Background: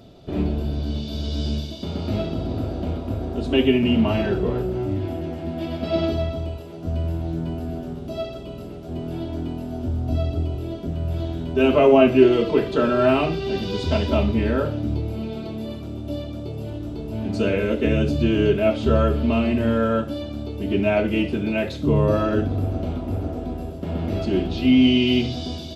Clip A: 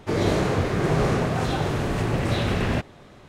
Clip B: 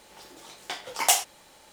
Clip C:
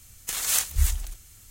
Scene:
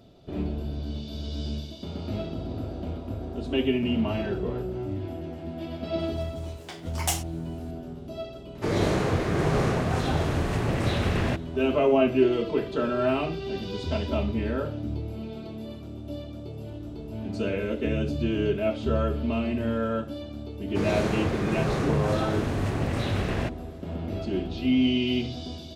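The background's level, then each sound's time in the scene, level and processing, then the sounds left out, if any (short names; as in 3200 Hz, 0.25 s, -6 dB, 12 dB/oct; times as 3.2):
background -7 dB
5.99 add B -7 dB
8.55 add A -2.5 dB
20.68 add A -5 dB
not used: C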